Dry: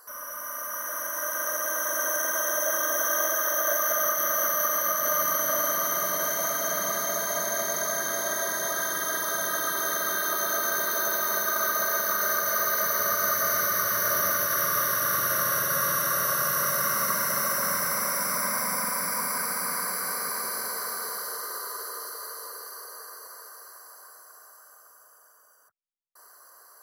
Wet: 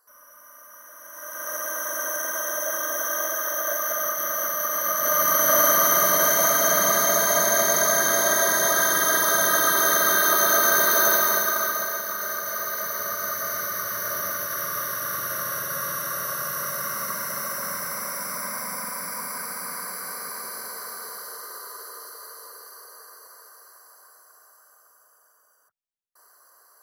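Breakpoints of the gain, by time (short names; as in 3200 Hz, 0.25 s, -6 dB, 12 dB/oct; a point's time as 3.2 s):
0.98 s -13 dB
1.55 s -1 dB
4.63 s -1 dB
5.6 s +8 dB
11.12 s +8 dB
12.04 s -3.5 dB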